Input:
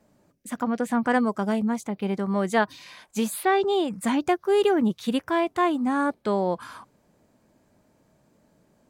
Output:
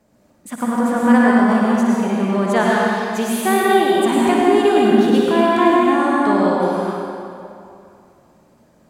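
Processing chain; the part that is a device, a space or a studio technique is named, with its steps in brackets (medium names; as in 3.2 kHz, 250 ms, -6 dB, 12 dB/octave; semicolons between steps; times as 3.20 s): tunnel (flutter echo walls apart 10.2 m, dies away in 0.41 s; reverberation RT60 2.6 s, pre-delay 92 ms, DRR -4.5 dB); trim +2.5 dB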